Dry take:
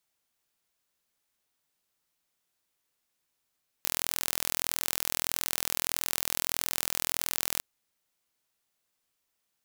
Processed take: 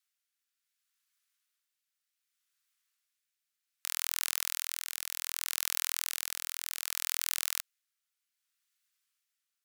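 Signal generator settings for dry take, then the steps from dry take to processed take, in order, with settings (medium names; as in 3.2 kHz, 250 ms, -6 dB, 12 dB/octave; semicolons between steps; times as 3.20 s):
pulse train 41.6 per s, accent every 0, -2 dBFS 3.77 s
steep high-pass 1.2 kHz 36 dB/octave; rotary cabinet horn 0.65 Hz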